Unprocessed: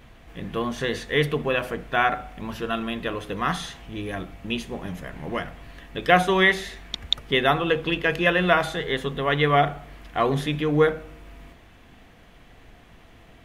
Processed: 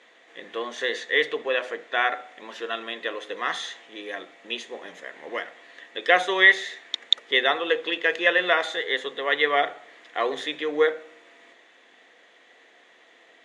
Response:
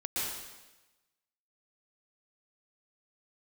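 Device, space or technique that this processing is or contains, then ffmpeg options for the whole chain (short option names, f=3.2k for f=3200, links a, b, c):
phone speaker on a table: -filter_complex "[0:a]asettb=1/sr,asplit=3[a][b][c];[a]atrim=end=1.004[d];[b]atrim=start=1:end=2.13,asetpts=PTS-STARTPTS,afade=t=in:d=0.004:c=qsin,afade=t=out:st=1.126:d=0.004:c=qsin,lowpass=9.2k[e];[c]atrim=start=2.126[f];[d][e]acrossfade=d=0.004:c1=hsin:c2=qsin[g];[g][f]acrossfade=d=0.004:c1=qsin:c2=hsin,highpass=f=330:w=0.5412,highpass=f=330:w=1.3066,equalizer=f=510:t=q:w=4:g=5,equalizer=f=1.9k:t=q:w=4:g=10,equalizer=f=3.6k:t=q:w=4:g=8,equalizer=f=6.8k:t=q:w=4:g=6,lowpass=f=8.6k:w=0.5412,lowpass=f=8.6k:w=1.3066,volume=-4.5dB"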